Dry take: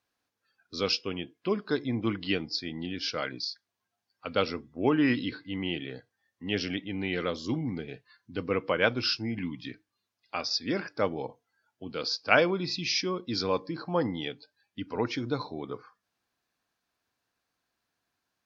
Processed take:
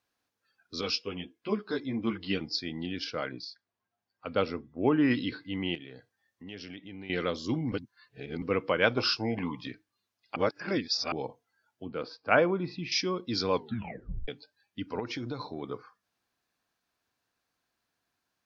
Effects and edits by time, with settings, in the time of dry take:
0.81–2.41 ensemble effect
3.04–5.11 high shelf 3000 Hz -11.5 dB
5.75–7.1 compressor 2.5:1, threshold -45 dBFS
7.72–8.42 reverse
8.97–9.67 band shelf 730 Hz +15.5 dB
10.36–11.12 reverse
11.86–12.92 LPF 1800 Hz
13.53 tape stop 0.75 s
14.99–15.62 compressor 4:1, threshold -32 dBFS

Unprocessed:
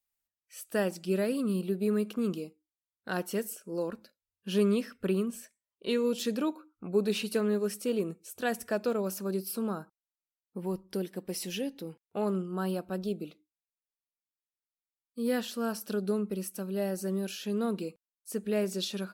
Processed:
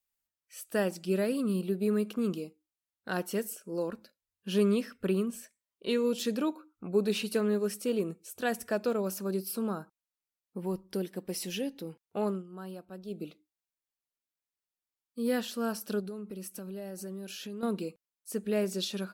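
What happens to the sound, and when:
12.26–13.23 dip -10.5 dB, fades 0.17 s
16–17.63 compressor 4:1, threshold -38 dBFS

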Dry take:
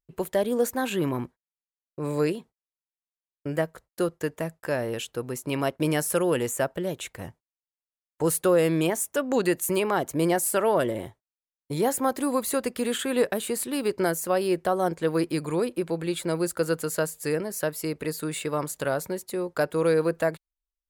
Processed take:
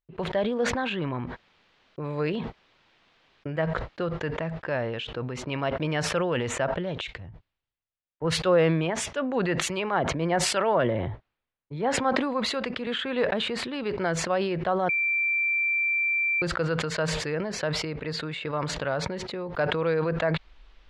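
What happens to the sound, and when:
7.01–12.87 three-band expander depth 100%
14.89–16.42 bleep 2350 Hz -22 dBFS
whole clip: LPF 3700 Hz 24 dB/oct; dynamic EQ 340 Hz, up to -7 dB, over -38 dBFS, Q 1.3; sustainer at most 31 dB/s

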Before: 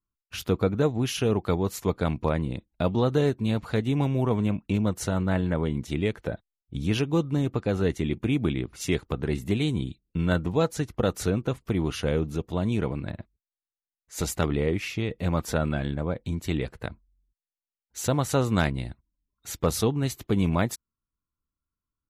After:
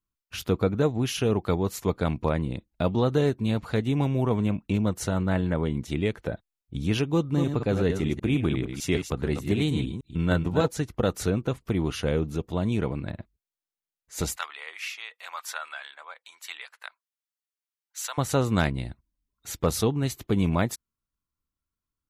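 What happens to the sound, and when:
7.14–10.68 reverse delay 0.151 s, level -6.5 dB
14.36–18.18 HPF 1000 Hz 24 dB/oct

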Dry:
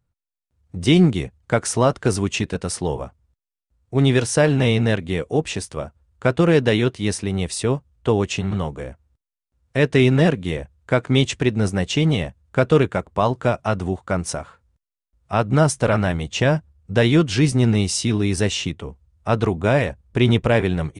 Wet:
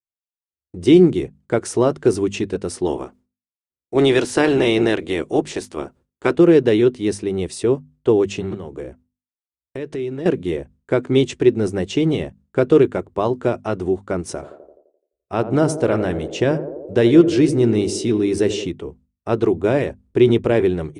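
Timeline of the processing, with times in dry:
2.85–6.36 spectral limiter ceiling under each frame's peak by 15 dB
8.54–10.26 compressor, threshold -26 dBFS
14.21–18.67 narrowing echo 85 ms, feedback 79%, band-pass 460 Hz, level -10 dB
whole clip: expander -43 dBFS; bell 360 Hz +14 dB 0.84 oct; notches 50/100/150/200/250 Hz; gain -5 dB

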